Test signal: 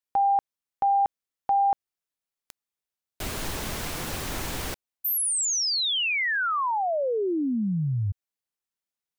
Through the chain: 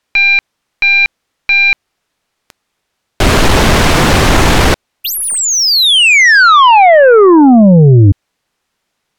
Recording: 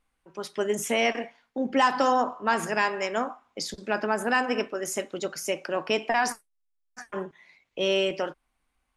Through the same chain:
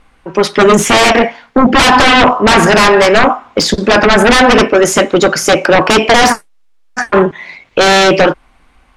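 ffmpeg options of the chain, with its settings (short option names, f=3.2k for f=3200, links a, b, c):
-af "aeval=exprs='0.355*(cos(1*acos(clip(val(0)/0.355,-1,1)))-cos(1*PI/2))+0.00631*(cos(4*acos(clip(val(0)/0.355,-1,1)))-cos(4*PI/2))':c=same,aeval=exprs='0.355*sin(PI/2*7.08*val(0)/0.355)':c=same,aemphasis=mode=reproduction:type=50fm,volume=6.5dB"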